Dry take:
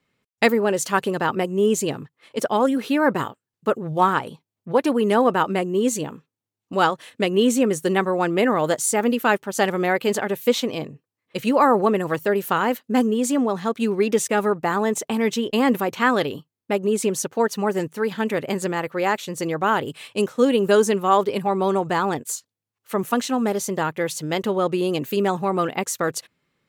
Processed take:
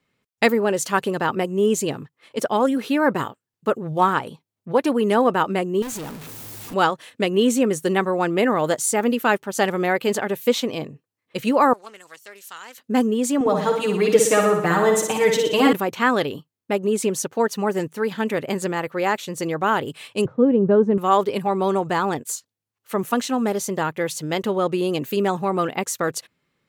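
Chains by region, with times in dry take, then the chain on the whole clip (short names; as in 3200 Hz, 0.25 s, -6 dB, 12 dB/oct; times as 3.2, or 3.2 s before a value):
5.82–6.74 zero-crossing step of -28.5 dBFS + high shelf 9900 Hz +9.5 dB + tube stage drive 29 dB, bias 0.75
11.73–12.78 band-pass 6500 Hz, Q 1.3 + Doppler distortion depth 0.15 ms
13.4–15.73 comb 6.5 ms, depth 99% + flutter echo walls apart 10.2 m, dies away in 0.69 s
20.25–20.98 Bessel low-pass 710 Hz + bell 120 Hz +14.5 dB 1.1 oct
whole clip: dry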